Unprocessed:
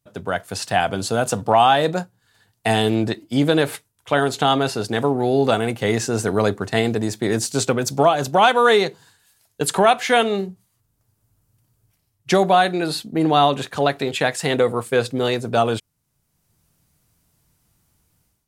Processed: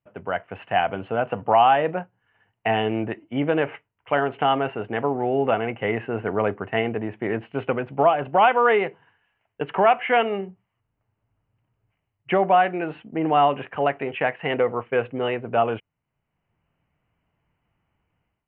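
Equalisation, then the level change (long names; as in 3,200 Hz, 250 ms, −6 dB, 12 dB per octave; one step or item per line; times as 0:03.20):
Chebyshev low-pass with heavy ripple 3,000 Hz, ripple 3 dB
high-frequency loss of the air 72 metres
low-shelf EQ 380 Hz −5.5 dB
0.0 dB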